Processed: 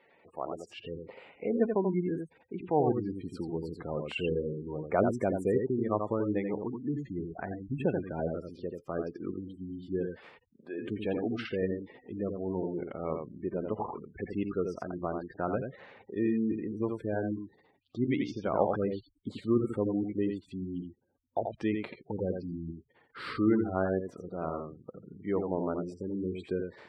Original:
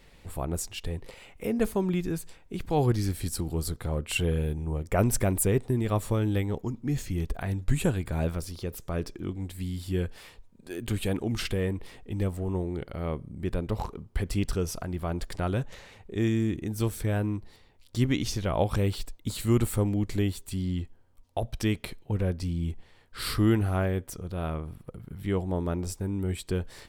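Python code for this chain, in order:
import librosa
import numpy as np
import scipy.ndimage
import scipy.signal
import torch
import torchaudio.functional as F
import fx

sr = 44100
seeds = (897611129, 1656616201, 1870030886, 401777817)

y = x + 10.0 ** (-5.0 / 20.0) * np.pad(x, (int(85 * sr / 1000.0), 0))[:len(x)]
y = fx.spec_gate(y, sr, threshold_db=-25, keep='strong')
y = fx.bandpass_edges(y, sr, low_hz=fx.steps((0.0, 450.0), (0.78, 240.0)), high_hz=2000.0)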